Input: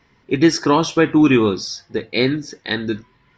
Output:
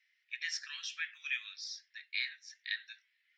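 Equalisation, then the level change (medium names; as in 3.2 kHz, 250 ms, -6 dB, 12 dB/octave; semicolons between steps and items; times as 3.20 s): steep high-pass 1.8 kHz 48 dB/octave; treble shelf 2.5 kHz -10.5 dB; -6.5 dB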